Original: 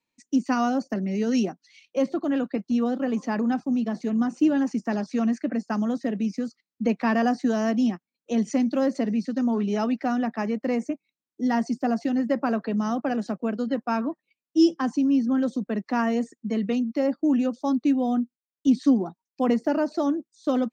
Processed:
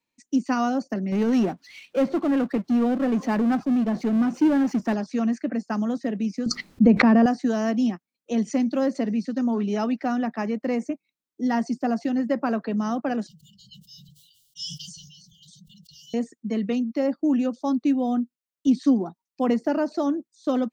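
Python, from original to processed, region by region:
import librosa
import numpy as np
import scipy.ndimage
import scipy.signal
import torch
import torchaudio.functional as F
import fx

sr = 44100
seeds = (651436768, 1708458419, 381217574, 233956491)

y = fx.chain(x, sr, fx.lowpass(hz=2300.0, slope=6),
    fx.power_curve(exponent=0.7), at=(1.12, 4.94))
y = fx.chain(y, sr, fx.tilt_eq(slope=-3.5),
    fx.pre_swell(db_per_s=22.0), at=(6.46, 7.26))
y = fx.chain(y, sr, fx.brickwall_bandstop(low_hz=170.0, high_hz=2800.0),
    fx.doubler(ms=14.0, db=-12),
    fx.sustainer(db_per_s=36.0), at=(13.27, 16.14))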